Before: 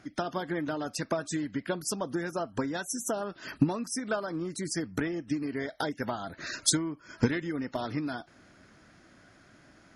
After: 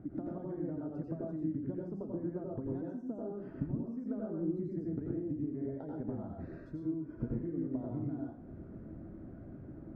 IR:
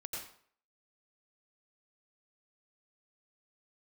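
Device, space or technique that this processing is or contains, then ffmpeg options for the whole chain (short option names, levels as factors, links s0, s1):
television next door: -filter_complex "[0:a]acompressor=threshold=0.00501:ratio=5,lowpass=350[s0];[1:a]atrim=start_sample=2205[s1];[s0][s1]afir=irnorm=-1:irlink=0,volume=5.31"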